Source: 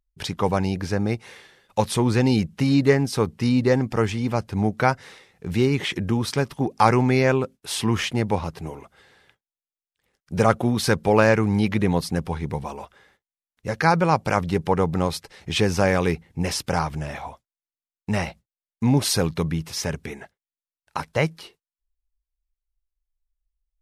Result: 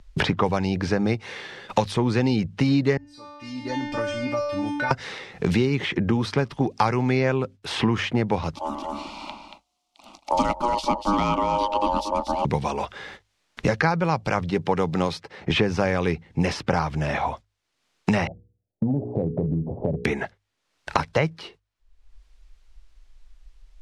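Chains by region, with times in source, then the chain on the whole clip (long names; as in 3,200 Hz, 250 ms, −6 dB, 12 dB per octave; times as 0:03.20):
0:02.97–0:04.91: stiff-string resonator 290 Hz, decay 0.77 s, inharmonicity 0.002 + downward compressor 1.5 to 1, threshold −48 dBFS
0:08.55–0:12.45: ring modulation 720 Hz + phaser with its sweep stopped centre 450 Hz, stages 6 + single-tap delay 231 ms −9.5 dB
0:14.50–0:15.50: high-pass filter 150 Hz + one half of a high-frequency compander decoder only
0:18.27–0:20.05: Butterworth low-pass 710 Hz 48 dB per octave + mains-hum notches 60/120/180/240/300/360/420/480 Hz + downward compressor 3 to 1, threshold −36 dBFS
whole clip: low-pass filter 5,200 Hz 12 dB per octave; mains-hum notches 50/100 Hz; multiband upward and downward compressor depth 100%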